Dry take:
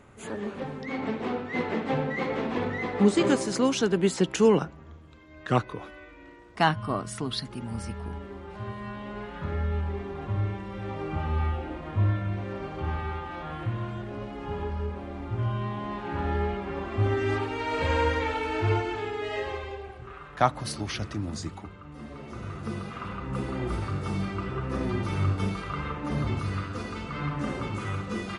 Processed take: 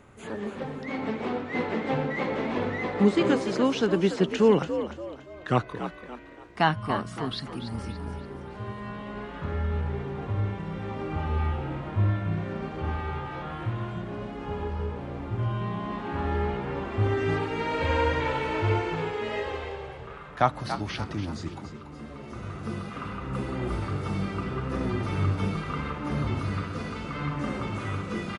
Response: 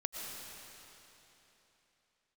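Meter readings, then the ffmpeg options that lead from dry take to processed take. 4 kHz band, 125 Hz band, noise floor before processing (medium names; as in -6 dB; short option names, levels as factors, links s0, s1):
-1.0 dB, +0.5 dB, -47 dBFS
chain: -filter_complex "[0:a]acrossover=split=4700[s0][s1];[s1]acompressor=threshold=0.002:ratio=4:attack=1:release=60[s2];[s0][s2]amix=inputs=2:normalize=0,asplit=5[s3][s4][s5][s6][s7];[s4]adelay=286,afreqshift=60,volume=0.316[s8];[s5]adelay=572,afreqshift=120,volume=0.12[s9];[s6]adelay=858,afreqshift=180,volume=0.0457[s10];[s7]adelay=1144,afreqshift=240,volume=0.0174[s11];[s3][s8][s9][s10][s11]amix=inputs=5:normalize=0"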